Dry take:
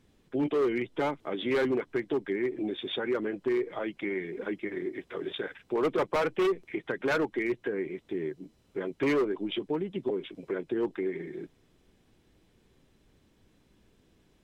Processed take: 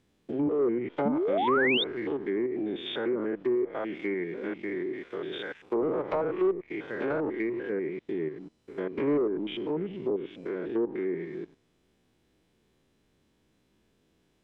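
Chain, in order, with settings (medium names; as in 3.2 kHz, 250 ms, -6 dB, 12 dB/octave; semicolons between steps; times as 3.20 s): spectrogram pixelated in time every 100 ms; bass shelf 82 Hz -7.5 dB; waveshaping leveller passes 1; low-pass that closes with the level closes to 900 Hz, closed at -24 dBFS; painted sound rise, 1.05–1.84 s, 200–3800 Hz -27 dBFS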